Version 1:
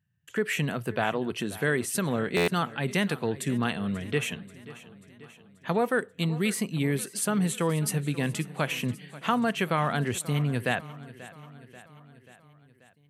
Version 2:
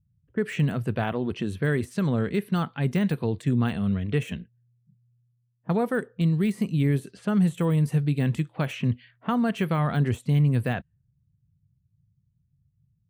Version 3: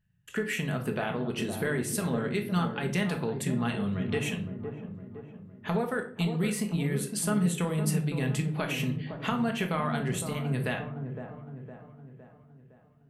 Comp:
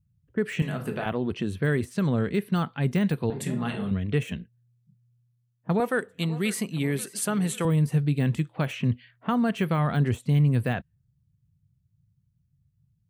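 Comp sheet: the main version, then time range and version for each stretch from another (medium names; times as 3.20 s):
2
0.62–1.06 s: from 3
3.30–3.91 s: from 3
5.80–7.65 s: from 1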